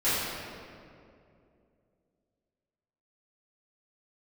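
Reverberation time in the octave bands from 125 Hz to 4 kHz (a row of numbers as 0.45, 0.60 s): 3.0, 3.0, 2.9, 2.1, 1.8, 1.4 s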